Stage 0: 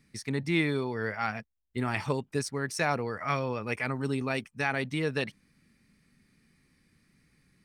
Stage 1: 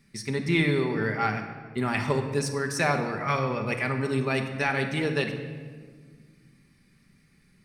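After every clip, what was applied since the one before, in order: reverberation RT60 1.6 s, pre-delay 5 ms, DRR 4 dB; trim +2.5 dB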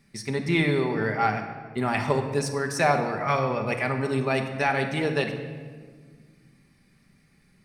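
peaking EQ 710 Hz +6.5 dB 0.83 oct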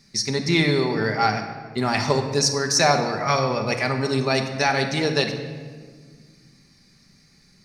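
high-order bell 5.2 kHz +13 dB 1 oct; trim +3 dB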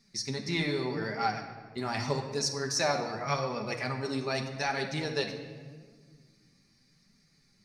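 flange 0.84 Hz, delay 4.1 ms, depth 7.2 ms, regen +42%; trim -6.5 dB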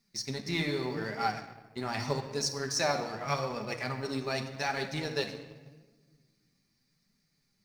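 companding laws mixed up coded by A

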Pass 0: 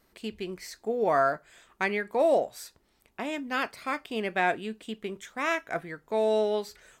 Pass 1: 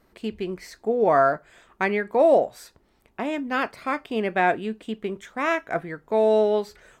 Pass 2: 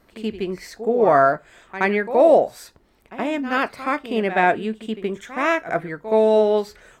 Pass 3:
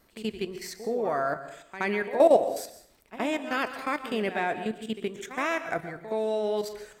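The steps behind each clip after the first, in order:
treble shelf 2.5 kHz -10 dB; trim +6.5 dB
reverse echo 73 ms -12.5 dB; trim +3.5 dB
treble shelf 3.9 kHz +10 dB; level held to a coarse grid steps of 12 dB; plate-style reverb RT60 0.6 s, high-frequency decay 0.8×, pre-delay 110 ms, DRR 11 dB; trim -3.5 dB

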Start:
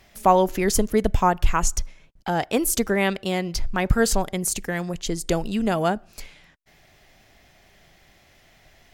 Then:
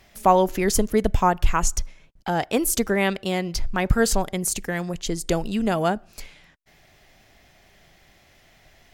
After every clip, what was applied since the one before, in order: no audible change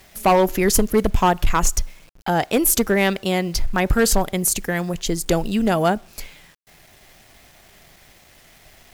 peaking EQ 12 kHz +6.5 dB 0.3 oct; bit crusher 9-bit; hard clipper -14 dBFS, distortion -13 dB; trim +4 dB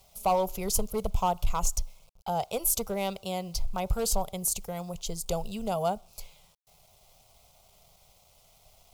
static phaser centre 720 Hz, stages 4; trim -8 dB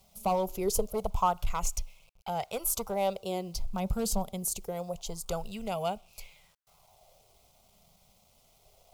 sweeping bell 0.25 Hz 200–2600 Hz +11 dB; trim -4 dB

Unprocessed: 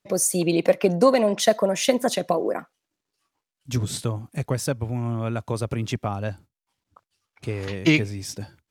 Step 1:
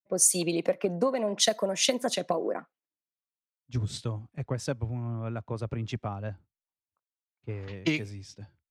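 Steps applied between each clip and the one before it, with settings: level-controlled noise filter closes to 2.7 kHz, open at -16 dBFS; compression 12:1, threshold -20 dBFS, peak gain reduction 10 dB; three bands expanded up and down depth 100%; trim -4.5 dB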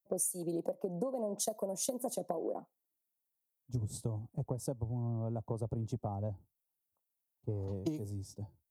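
FFT filter 880 Hz 0 dB, 1.6 kHz -25 dB, 2.4 kHz -28 dB, 12 kHz +10 dB; compression 8:1, threshold -34 dBFS, peak gain reduction 19 dB; trim +1.5 dB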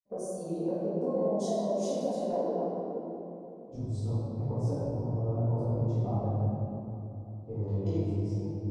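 chorus 0.45 Hz, delay 17 ms, depth 3.5 ms; distance through air 110 m; reverberation RT60 3.2 s, pre-delay 4 ms, DRR -12 dB; trim -3.5 dB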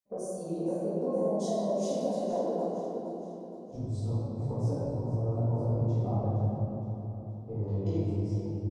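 feedback delay 466 ms, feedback 49%, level -13 dB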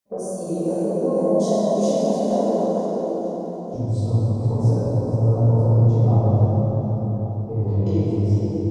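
plate-style reverb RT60 4 s, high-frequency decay 0.75×, DRR 1 dB; trim +7.5 dB

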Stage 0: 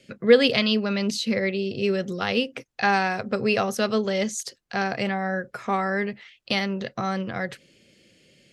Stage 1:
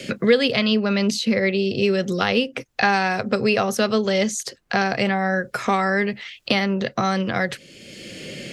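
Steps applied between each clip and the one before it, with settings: three bands compressed up and down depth 70%; trim +4 dB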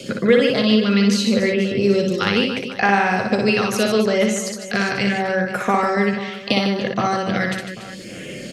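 LFO notch sine 0.76 Hz 620–4700 Hz; reverse bouncing-ball echo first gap 60 ms, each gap 1.5×, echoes 5; trim +1 dB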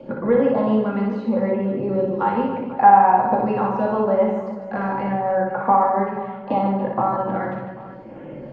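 resonant low-pass 920 Hz, resonance Q 9.8; simulated room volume 840 m³, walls furnished, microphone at 2.3 m; trim -7 dB

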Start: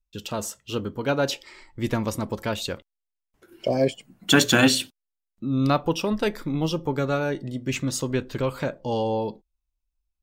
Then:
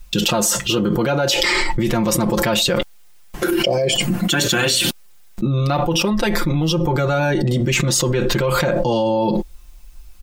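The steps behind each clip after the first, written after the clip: comb 5.7 ms, depth 93%; level flattener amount 100%; trim -5 dB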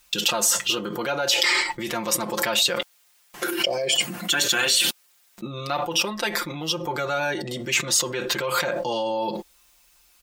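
high-pass 960 Hz 6 dB/octave; trim -1.5 dB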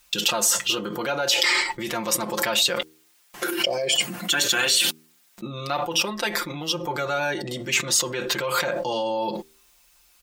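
de-hum 78.35 Hz, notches 6

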